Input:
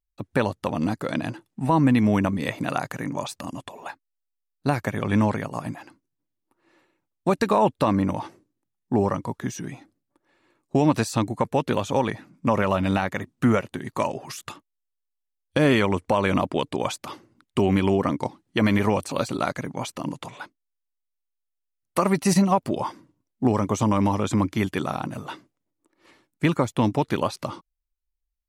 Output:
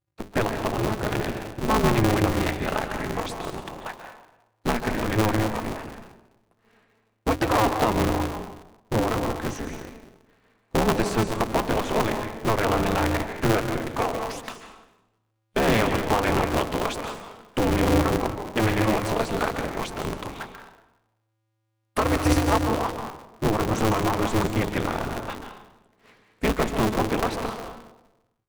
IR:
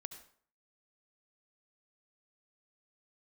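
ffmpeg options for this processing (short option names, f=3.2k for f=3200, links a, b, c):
-filter_complex "[0:a]bass=f=250:g=0,treble=f=4k:g=-7,asplit=2[a][b];[b]asoftclip=type=hard:threshold=-23dB,volume=-0.5dB[c];[a][c]amix=inputs=2:normalize=0,bandreject=f=50:t=h:w=6,bandreject=f=100:t=h:w=6,bandreject=f=150:t=h:w=6,bandreject=f=200:t=h:w=6,bandreject=f=250:t=h:w=6,bandreject=f=300:t=h:w=6[d];[1:a]atrim=start_sample=2205,asetrate=22491,aresample=44100[e];[d][e]afir=irnorm=-1:irlink=0,aeval=exprs='val(0)*sgn(sin(2*PI*110*n/s))':c=same,volume=-3.5dB"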